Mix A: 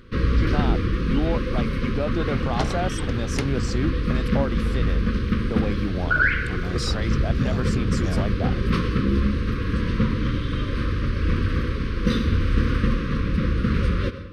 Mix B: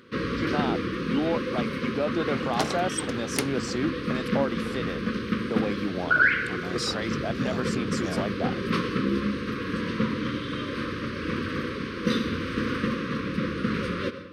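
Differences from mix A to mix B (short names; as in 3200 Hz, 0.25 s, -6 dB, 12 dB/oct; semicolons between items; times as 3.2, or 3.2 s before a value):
second sound: remove air absorption 78 m; master: add HPF 210 Hz 12 dB/oct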